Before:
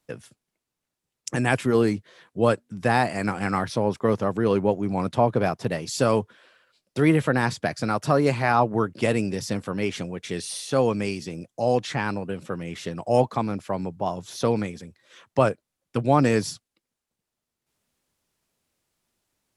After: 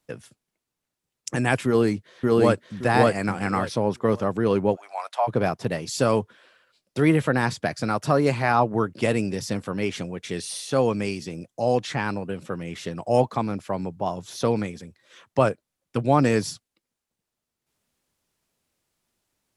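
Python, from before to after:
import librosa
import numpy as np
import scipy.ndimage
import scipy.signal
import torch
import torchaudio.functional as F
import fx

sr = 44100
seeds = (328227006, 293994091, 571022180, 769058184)

y = fx.echo_throw(x, sr, start_s=1.66, length_s=1.14, ms=570, feedback_pct=25, wet_db=0.0)
y = fx.cheby1_highpass(y, sr, hz=660.0, order=4, at=(4.75, 5.27), fade=0.02)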